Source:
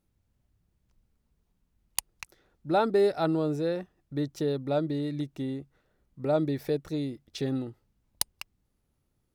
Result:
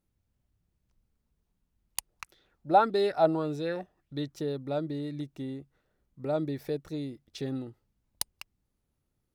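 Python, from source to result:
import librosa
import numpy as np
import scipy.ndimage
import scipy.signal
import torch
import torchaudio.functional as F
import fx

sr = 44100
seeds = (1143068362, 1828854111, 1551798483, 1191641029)

y = fx.bell_lfo(x, sr, hz=1.7, low_hz=590.0, high_hz=3900.0, db=12, at=(2.1, 4.34))
y = y * 10.0 ** (-4.0 / 20.0)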